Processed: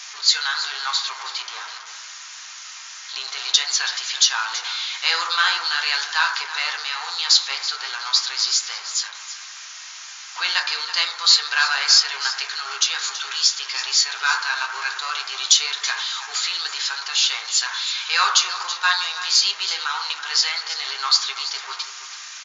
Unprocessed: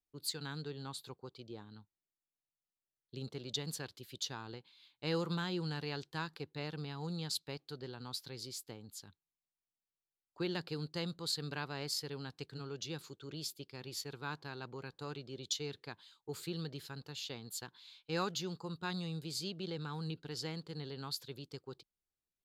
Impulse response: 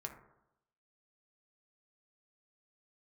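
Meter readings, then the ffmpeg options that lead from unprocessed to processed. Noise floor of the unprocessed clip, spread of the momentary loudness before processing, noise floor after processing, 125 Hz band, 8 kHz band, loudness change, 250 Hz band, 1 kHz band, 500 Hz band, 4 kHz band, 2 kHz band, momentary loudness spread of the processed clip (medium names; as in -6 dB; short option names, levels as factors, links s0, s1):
under -85 dBFS, 12 LU, -38 dBFS, under -35 dB, +24.5 dB, +21.5 dB, under -15 dB, +21.0 dB, -2.5 dB, +24.5 dB, +25.5 dB, 17 LU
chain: -filter_complex "[0:a]aeval=exprs='val(0)+0.5*0.00562*sgn(val(0))':c=same,equalizer=f=6000:w=1.7:g=4.5[s0];[1:a]atrim=start_sample=2205[s1];[s0][s1]afir=irnorm=-1:irlink=0,apsyclip=33.5,flanger=delay=4.7:depth=5.2:regen=-68:speed=1:shape=triangular,highpass=f=1100:w=0.5412,highpass=f=1100:w=1.3066,aecho=1:1:328:0.224" -ar 16000 -c:a libmp3lame -b:a 160k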